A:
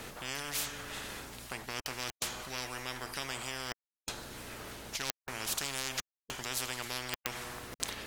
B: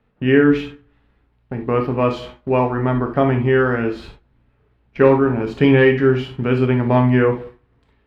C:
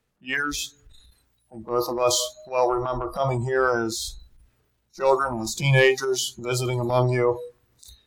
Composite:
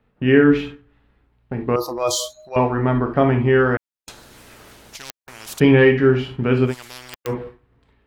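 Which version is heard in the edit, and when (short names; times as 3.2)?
B
1.76–2.56 from C
3.77–5.6 from A
6.7–7.3 from A, crossfade 0.10 s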